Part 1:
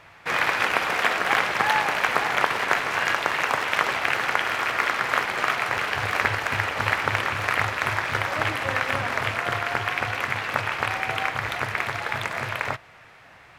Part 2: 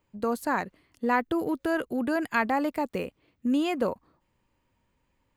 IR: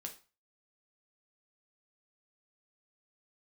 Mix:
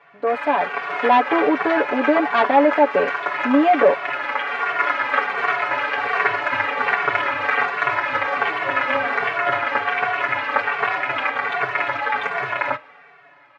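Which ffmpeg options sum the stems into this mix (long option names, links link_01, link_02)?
-filter_complex "[0:a]asplit=2[link_01][link_02];[link_02]adelay=2.2,afreqshift=-1.3[link_03];[link_01][link_03]amix=inputs=2:normalize=1,volume=-2dB,asplit=2[link_04][link_05];[link_05]volume=-6dB[link_06];[1:a]equalizer=frequency=650:width=0.98:gain=10,aeval=exprs='0.501*sin(PI/2*2.24*val(0)/0.501)':channel_layout=same,volume=-11dB,asplit=2[link_07][link_08];[link_08]apad=whole_len=599345[link_09];[link_04][link_09]sidechaincompress=threshold=-30dB:ratio=8:attack=16:release=1320[link_10];[2:a]atrim=start_sample=2205[link_11];[link_06][link_11]afir=irnorm=-1:irlink=0[link_12];[link_10][link_07][link_12]amix=inputs=3:normalize=0,aecho=1:1:7:0.98,dynaudnorm=framelen=160:gausssize=9:maxgain=6.5dB,highpass=300,lowpass=2300"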